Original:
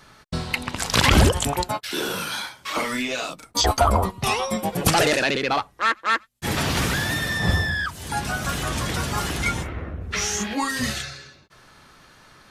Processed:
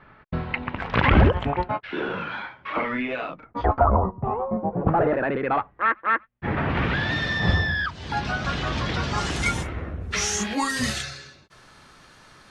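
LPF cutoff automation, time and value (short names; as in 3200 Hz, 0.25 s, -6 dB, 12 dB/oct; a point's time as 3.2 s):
LPF 24 dB/oct
3.26 s 2400 Hz
4.18 s 1000 Hz
4.72 s 1000 Hz
5.59 s 2100 Hz
6.66 s 2100 Hz
7.21 s 4700 Hz
9.01 s 4700 Hz
9.52 s 11000 Hz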